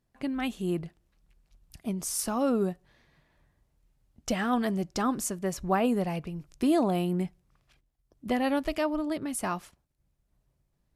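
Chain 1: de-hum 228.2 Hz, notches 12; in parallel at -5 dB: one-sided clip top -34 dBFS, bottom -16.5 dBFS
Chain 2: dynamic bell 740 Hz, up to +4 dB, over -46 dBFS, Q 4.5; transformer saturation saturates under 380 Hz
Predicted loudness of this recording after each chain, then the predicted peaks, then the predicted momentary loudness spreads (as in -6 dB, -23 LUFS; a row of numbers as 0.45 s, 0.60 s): -26.5 LUFS, -29.5 LUFS; -11.0 dBFS, -13.0 dBFS; 10 LU, 11 LU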